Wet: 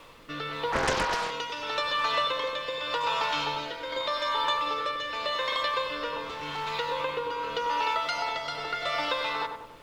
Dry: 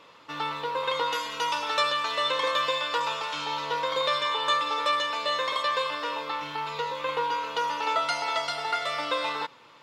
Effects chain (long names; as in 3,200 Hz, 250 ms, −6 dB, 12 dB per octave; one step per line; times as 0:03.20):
0:03.56–0:04.45: comb filter 3.2 ms, depth 72%
downward compressor, threshold −29 dBFS, peak gain reduction 9 dB
0:06.23–0:06.74: hard clipping −33 dBFS, distortion −24 dB
low-pass filter 5,900 Hz 12 dB per octave
background noise pink −61 dBFS
rotating-speaker cabinet horn 0.85 Hz
feedback echo with a low-pass in the loop 96 ms, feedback 59%, low-pass 1,300 Hz, level −5 dB
0:00.72–0:01.31: highs frequency-modulated by the lows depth 0.81 ms
level +5.5 dB